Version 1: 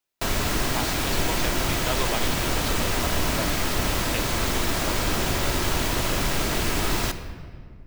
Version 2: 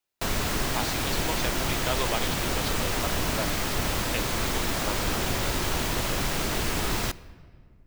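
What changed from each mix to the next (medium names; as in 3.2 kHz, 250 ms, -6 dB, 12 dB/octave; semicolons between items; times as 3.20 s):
background: send -11.0 dB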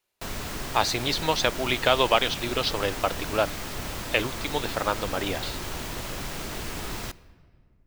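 speech +10.0 dB; background -6.5 dB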